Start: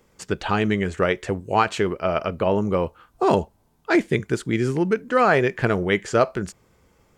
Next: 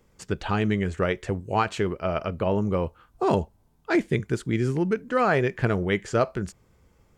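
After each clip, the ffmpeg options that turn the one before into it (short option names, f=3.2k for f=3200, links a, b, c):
-af "lowshelf=f=150:g=8.5,volume=-5dB"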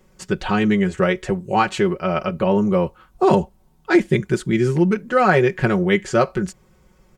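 -af "aecho=1:1:5.4:0.75,volume=4.5dB"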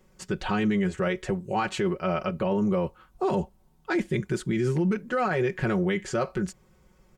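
-af "alimiter=limit=-13dB:level=0:latency=1:release=17,volume=-5dB"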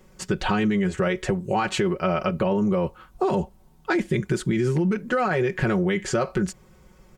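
-af "acompressor=threshold=-26dB:ratio=6,volume=7dB"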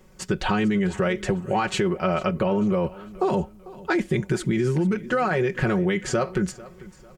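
-af "aecho=1:1:446|892|1338:0.106|0.0392|0.0145"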